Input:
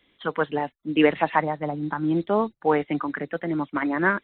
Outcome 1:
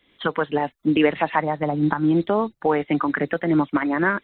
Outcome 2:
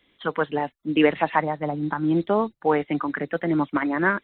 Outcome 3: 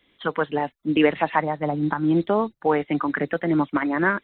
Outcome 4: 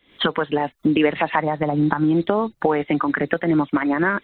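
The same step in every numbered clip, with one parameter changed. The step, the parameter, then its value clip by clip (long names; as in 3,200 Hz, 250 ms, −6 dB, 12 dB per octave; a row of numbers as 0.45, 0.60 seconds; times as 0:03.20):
camcorder AGC, rising by: 36, 5, 13, 89 dB per second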